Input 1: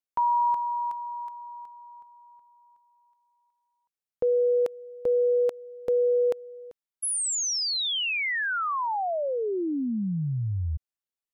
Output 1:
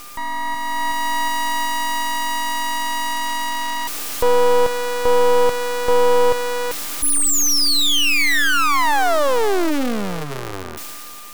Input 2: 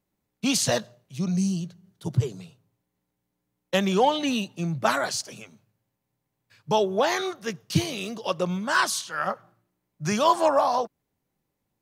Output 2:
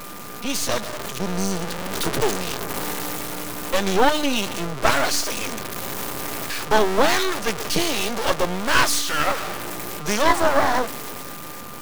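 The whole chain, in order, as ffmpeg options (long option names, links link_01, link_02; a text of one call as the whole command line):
ffmpeg -i in.wav -filter_complex "[0:a]aeval=exprs='val(0)+0.5*0.0631*sgn(val(0))':channel_layout=same,tremolo=f=290:d=0.4,acrossover=split=240[link_01][link_02];[link_01]highpass=140[link_03];[link_02]dynaudnorm=framelen=150:gausssize=11:maxgain=13dB[link_04];[link_03][link_04]amix=inputs=2:normalize=0,aeval=exprs='val(0)+0.0178*sin(2*PI*1200*n/s)':channel_layout=same,aeval=exprs='max(val(0),0)':channel_layout=same" out.wav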